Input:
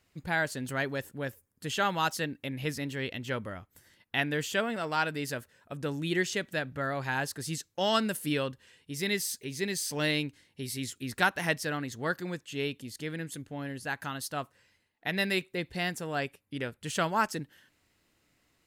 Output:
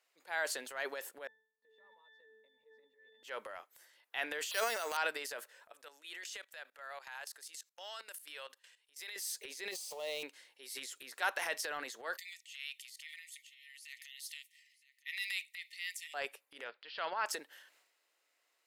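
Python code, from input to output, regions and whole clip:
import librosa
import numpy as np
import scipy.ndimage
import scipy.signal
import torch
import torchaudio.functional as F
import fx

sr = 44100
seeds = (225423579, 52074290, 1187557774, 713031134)

y = fx.chain(x, sr, fx.high_shelf(hz=3100.0, db=-8.5),
    fx.octave_resonator(note='A', decay_s=0.55), at=(1.27, 3.23))
y = fx.chain(y, sr, fx.lowpass(hz=4200.0, slope=24),
    fx.high_shelf(hz=2700.0, db=10.0),
    fx.resample_bad(factor=6, down='none', up='hold'), at=(4.51, 4.97))
y = fx.chain(y, sr, fx.highpass(hz=1100.0, slope=6),
    fx.high_shelf(hz=8200.0, db=2.5),
    fx.level_steps(step_db=20), at=(5.72, 9.16))
y = fx.chain(y, sr, fx.crossing_spikes(level_db=-26.5),
    fx.riaa(side='playback'),
    fx.fixed_phaser(hz=650.0, stages=4), at=(9.71, 10.23))
y = fx.chain(y, sr, fx.brickwall_highpass(low_hz=1800.0),
    fx.echo_single(ms=966, db=-19.0), at=(12.17, 16.14))
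y = fx.chain(y, sr, fx.steep_lowpass(hz=5000.0, slope=96),
    fx.peak_eq(hz=370.0, db=-4.5, octaves=2.3), at=(16.64, 17.26))
y = scipy.signal.sosfilt(scipy.signal.butter(4, 490.0, 'highpass', fs=sr, output='sos'), y)
y = fx.transient(y, sr, attack_db=-5, sustain_db=9)
y = F.gain(torch.from_numpy(y), -5.5).numpy()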